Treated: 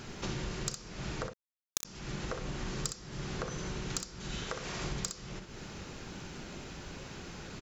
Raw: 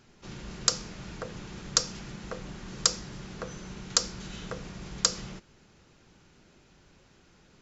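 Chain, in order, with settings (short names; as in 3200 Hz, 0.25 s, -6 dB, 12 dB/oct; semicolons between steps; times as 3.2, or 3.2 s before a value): 4.44–4.84 low shelf 320 Hz -11.5 dB; compressor 16:1, threshold -48 dBFS, peak gain reduction 31.5 dB; 1.27–1.85 companded quantiser 2-bit; soft clip -29.5 dBFS, distortion -16 dB; early reflections 35 ms -17.5 dB, 62 ms -7 dB; gain +14 dB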